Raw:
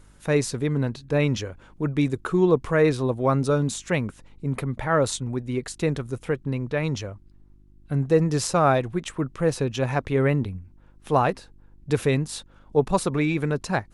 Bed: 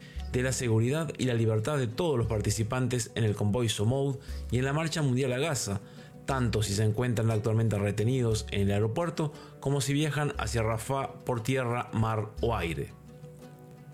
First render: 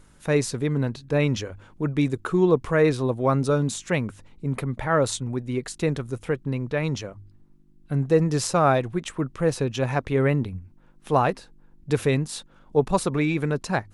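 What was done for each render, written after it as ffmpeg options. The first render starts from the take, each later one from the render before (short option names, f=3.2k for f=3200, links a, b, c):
-af "bandreject=f=50:t=h:w=4,bandreject=f=100:t=h:w=4"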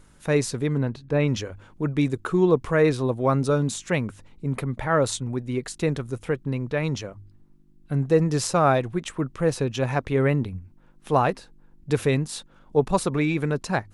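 -filter_complex "[0:a]asettb=1/sr,asplit=3[a][b][c];[a]atrim=end=0.784[d];[b]atrim=start=0.78:end=1.28,asetpts=PTS-STARTPTS,afade=t=in:d=0.004:c=qsin,afade=t=out:st=0.496:d=0.004:c=qsin,highshelf=f=4k:g=-10[e];[c]atrim=start=1.276[f];[d][e]acrossfade=d=0.004:c1=hsin:c2=qsin[g];[g][f]acrossfade=d=0.004:c1=qsin:c2=hsin"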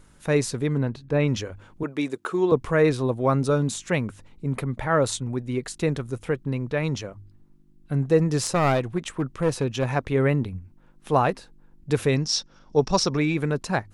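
-filter_complex "[0:a]asettb=1/sr,asplit=3[a][b][c];[a]atrim=end=1.834[d];[b]atrim=start=1.83:end=2.52,asetpts=PTS-STARTPTS,afade=t=in:d=0.004:c=qsin,afade=t=out:st=0.686:d=0.004:c=qsin,highpass=310[e];[c]atrim=start=2.516[f];[d][e]acrossfade=d=0.004:c1=hsin:c2=qsin[g];[g][f]acrossfade=d=0.004:c1=qsin:c2=hsin,asettb=1/sr,asplit=3[h][i][j];[h]atrim=end=8.394[k];[i]atrim=start=8.39:end=9.94,asetpts=PTS-STARTPTS,afade=t=in:d=0.004:c=qsin,afade=t=out:st=1.546:d=0.004:c=qsin,aeval=exprs='clip(val(0),-1,0.1)':c=same[l];[j]atrim=start=9.936[m];[k][l]acrossfade=d=0.004:c1=hsin:c2=qsin[n];[n][m]acrossfade=d=0.004:c1=qsin:c2=hsin,asettb=1/sr,asplit=3[o][p][q];[o]atrim=end=12.164[r];[p]atrim=start=12.16:end=13.17,asetpts=PTS-STARTPTS,afade=t=in:d=0.004:c=qsin,afade=t=out:st=1.006:d=0.004:c=qsin,lowpass=f=5.5k:t=q:w=12[s];[q]atrim=start=13.166[t];[r][s]acrossfade=d=0.004:c1=hsin:c2=qsin[u];[u][t]acrossfade=d=0.004:c1=qsin:c2=hsin"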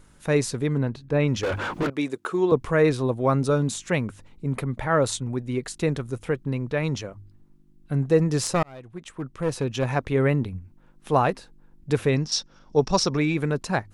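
-filter_complex "[0:a]asettb=1/sr,asplit=3[a][b][c];[a]atrim=end=1.434[d];[b]atrim=start=1.43:end=1.9,asetpts=PTS-STARTPTS,afade=t=in:d=0.004:c=qsin,afade=t=out:st=0.466:d=0.004:c=qsin,asplit=2[e][f];[f]highpass=f=720:p=1,volume=38dB,asoftclip=type=tanh:threshold=-17.5dB[g];[e][g]amix=inputs=2:normalize=0,lowpass=f=2.1k:p=1,volume=-6dB[h];[c]atrim=start=1.896[i];[d][h]acrossfade=d=0.004:c1=hsin:c2=qsin[j];[j][i]acrossfade=d=0.004:c1=qsin:c2=hsin,asettb=1/sr,asplit=3[k][l][m];[k]atrim=end=11.924[n];[l]atrim=start=11.92:end=12.32,asetpts=PTS-STARTPTS,afade=t=in:d=0.004:c=qsin,afade=t=out:st=0.396:d=0.004:c=qsin,acrossover=split=3500[o][p];[p]acompressor=threshold=-42dB:ratio=4:attack=1:release=60[q];[o][q]amix=inputs=2:normalize=0[r];[m]atrim=start=12.316[s];[n][r]acrossfade=d=0.004:c1=hsin:c2=qsin[t];[t][s]acrossfade=d=0.004:c1=qsin:c2=hsin,asplit=2[u][v];[u]atrim=end=8.63,asetpts=PTS-STARTPTS,afade=t=out:st=8.626:d=0.004:c=hsin[w];[v]atrim=start=8.63,asetpts=PTS-STARTPTS,afade=t=in:d=1.15[x];[w][x]concat=n=2:v=0:a=1"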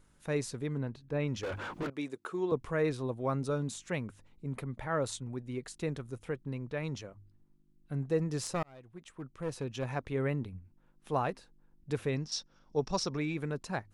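-af "volume=-11dB"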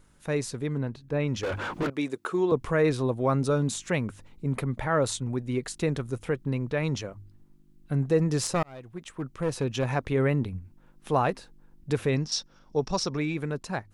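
-filter_complex "[0:a]dynaudnorm=f=210:g=17:m=4.5dB,asplit=2[a][b];[b]alimiter=limit=-24dB:level=0:latency=1:release=110,volume=-2dB[c];[a][c]amix=inputs=2:normalize=0"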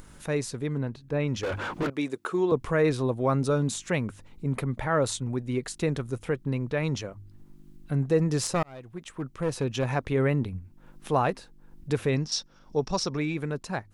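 -af "acompressor=mode=upward:threshold=-38dB:ratio=2.5"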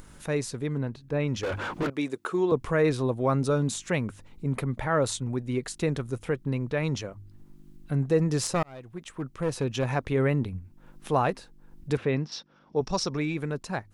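-filter_complex "[0:a]asettb=1/sr,asplit=3[a][b][c];[a]atrim=end=11.974[d];[b]atrim=start=11.97:end=12.81,asetpts=PTS-STARTPTS,afade=t=in:d=0.004:c=qsin,afade=t=out:st=0.836:d=0.004:c=qsin,highpass=120,lowpass=3.2k[e];[c]atrim=start=12.806[f];[d][e]acrossfade=d=0.004:c1=hsin:c2=qsin[g];[g][f]acrossfade=d=0.004:c1=qsin:c2=hsin"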